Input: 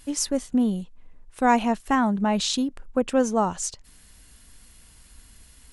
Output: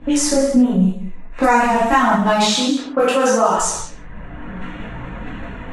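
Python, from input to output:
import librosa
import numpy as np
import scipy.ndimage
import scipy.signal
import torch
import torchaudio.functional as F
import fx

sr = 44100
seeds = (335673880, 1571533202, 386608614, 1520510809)

p1 = fx.wiener(x, sr, points=9)
p2 = fx.peak_eq(p1, sr, hz=3200.0, db=-15.0, octaves=0.22, at=(0.64, 1.67))
p3 = fx.highpass(p2, sr, hz=350.0, slope=12, at=(2.3, 3.55), fade=0.02)
p4 = fx.rev_gated(p3, sr, seeds[0], gate_ms=200, shape='falling', drr_db=-6.5)
p5 = fx.dynamic_eq(p4, sr, hz=1300.0, q=1.1, threshold_db=-35.0, ratio=4.0, max_db=5)
p6 = fx.over_compress(p5, sr, threshold_db=-19.0, ratio=-1.0)
p7 = p5 + F.gain(torch.from_numpy(p6), -1.0).numpy()
p8 = fx.chorus_voices(p7, sr, voices=4, hz=0.41, base_ms=20, depth_ms=3.9, mix_pct=60)
p9 = p8 + fx.echo_single(p8, sr, ms=184, db=-16.0, dry=0)
p10 = fx.env_lowpass(p9, sr, base_hz=990.0, full_db=-16.0)
y = fx.band_squash(p10, sr, depth_pct=70)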